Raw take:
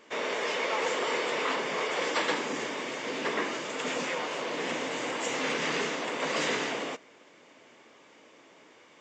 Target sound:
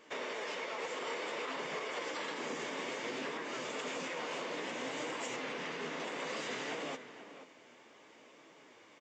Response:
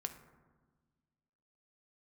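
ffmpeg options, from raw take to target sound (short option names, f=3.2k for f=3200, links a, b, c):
-filter_complex "[0:a]alimiter=level_in=3dB:limit=-24dB:level=0:latency=1:release=203,volume=-3dB,asplit=2[a][b];[b]adelay=484,volume=-11dB,highshelf=f=4k:g=-10.9[c];[a][c]amix=inputs=2:normalize=0,flanger=delay=6.1:depth=6.8:regen=68:speed=0.59:shape=triangular,asettb=1/sr,asplit=3[d][e][f];[d]atrim=end=5.364[g];[e]atrim=start=5.36:end=6,asetpts=PTS-STARTPTS,afade=t=in:d=0.004:c=qsin,afade=t=out:st=0.636:d=0.004:c=qsin,lowpass=f=3.9k:p=1[h];[f]atrim=start=5.996[i];[g][h]acrossfade=d=0.004:c1=hsin:c2=qsin[j];[j][i]acrossfade=d=0.004:c1=qsin:c2=hsin,volume=1dB"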